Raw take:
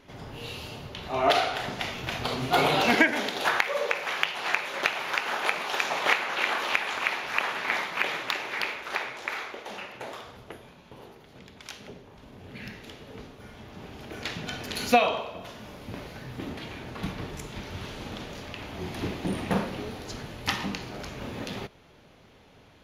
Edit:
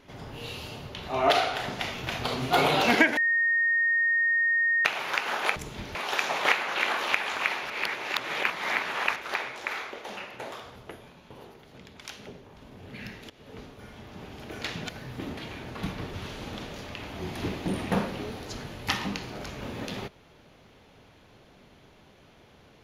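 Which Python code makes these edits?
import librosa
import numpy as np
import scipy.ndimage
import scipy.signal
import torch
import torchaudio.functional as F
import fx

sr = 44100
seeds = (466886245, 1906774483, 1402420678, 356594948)

y = fx.edit(x, sr, fx.bleep(start_s=3.17, length_s=1.68, hz=1850.0, db=-21.0),
    fx.reverse_span(start_s=7.31, length_s=1.46),
    fx.fade_in_from(start_s=12.91, length_s=0.38, curve='qsin', floor_db=-16.5),
    fx.cut(start_s=14.5, length_s=1.59),
    fx.move(start_s=17.34, length_s=0.39, to_s=5.56), tone=tone)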